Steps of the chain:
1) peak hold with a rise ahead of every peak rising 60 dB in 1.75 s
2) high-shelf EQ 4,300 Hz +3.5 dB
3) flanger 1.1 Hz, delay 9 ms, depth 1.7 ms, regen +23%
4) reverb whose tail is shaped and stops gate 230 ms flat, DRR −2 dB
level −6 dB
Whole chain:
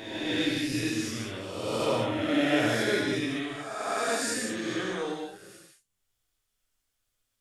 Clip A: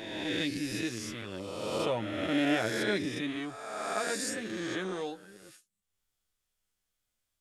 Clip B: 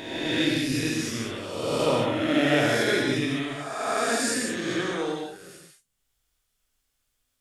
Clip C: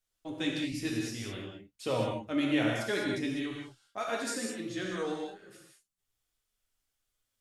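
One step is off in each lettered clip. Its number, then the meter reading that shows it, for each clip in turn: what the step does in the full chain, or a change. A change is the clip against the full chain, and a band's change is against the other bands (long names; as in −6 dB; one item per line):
4, change in integrated loudness −4.0 LU
3, change in integrated loudness +3.5 LU
1, 125 Hz band +3.5 dB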